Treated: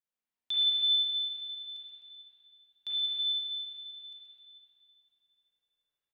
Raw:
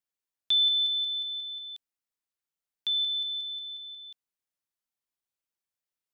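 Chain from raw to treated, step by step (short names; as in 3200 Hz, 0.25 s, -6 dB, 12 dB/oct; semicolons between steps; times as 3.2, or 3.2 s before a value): feedback echo 0.128 s, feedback 60%, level -8.5 dB; spring tank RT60 2.6 s, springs 34/51 ms, chirp 65 ms, DRR -8.5 dB; gain -8.5 dB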